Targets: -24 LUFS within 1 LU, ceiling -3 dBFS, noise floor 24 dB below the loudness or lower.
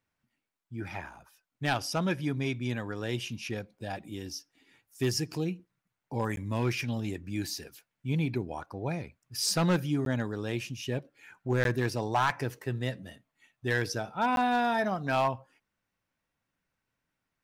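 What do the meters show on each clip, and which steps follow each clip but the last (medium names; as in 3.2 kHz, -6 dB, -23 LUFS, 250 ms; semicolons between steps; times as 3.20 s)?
clipped samples 0.4%; clipping level -19.5 dBFS; dropouts 4; longest dropout 12 ms; loudness -31.5 LUFS; peak level -19.5 dBFS; loudness target -24.0 LUFS
-> clip repair -19.5 dBFS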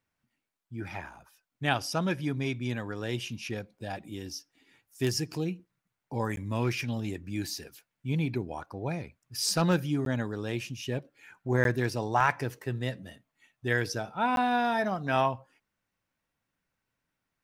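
clipped samples 0.0%; dropouts 4; longest dropout 12 ms
-> interpolate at 6.36/10.05/11.64/14.36 s, 12 ms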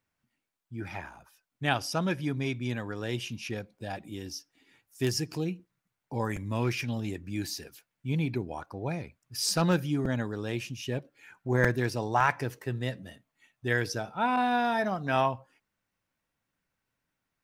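dropouts 0; loudness -31.0 LUFS; peak level -10.5 dBFS; loudness target -24.0 LUFS
-> trim +7 dB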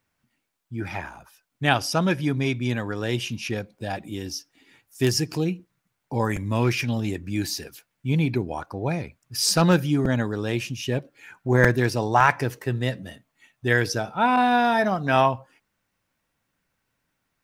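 loudness -24.0 LUFS; peak level -3.5 dBFS; noise floor -77 dBFS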